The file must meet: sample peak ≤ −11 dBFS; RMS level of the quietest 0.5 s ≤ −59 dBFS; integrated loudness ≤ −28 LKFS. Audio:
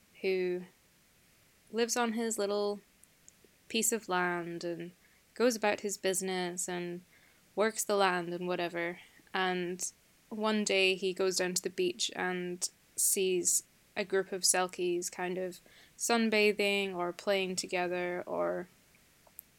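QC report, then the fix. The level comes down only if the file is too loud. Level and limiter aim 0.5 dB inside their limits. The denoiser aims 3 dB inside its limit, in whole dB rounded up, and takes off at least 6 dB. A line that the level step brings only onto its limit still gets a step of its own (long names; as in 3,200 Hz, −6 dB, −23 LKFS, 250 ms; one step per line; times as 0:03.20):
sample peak −12.5 dBFS: in spec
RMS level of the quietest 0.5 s −66 dBFS: in spec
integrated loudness −32.0 LKFS: in spec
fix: no processing needed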